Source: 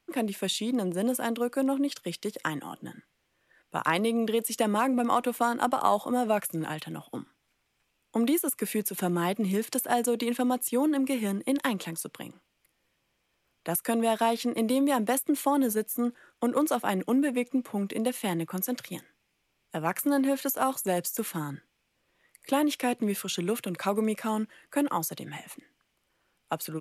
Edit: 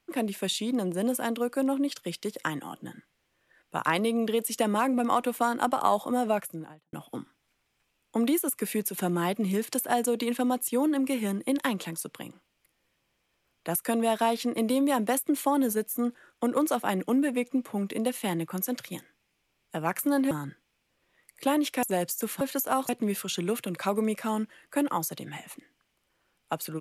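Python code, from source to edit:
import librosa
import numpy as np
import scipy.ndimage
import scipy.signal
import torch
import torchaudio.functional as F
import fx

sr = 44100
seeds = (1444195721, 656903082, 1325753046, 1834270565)

y = fx.studio_fade_out(x, sr, start_s=6.23, length_s=0.7)
y = fx.edit(y, sr, fx.swap(start_s=20.31, length_s=0.48, other_s=21.37, other_length_s=1.52), tone=tone)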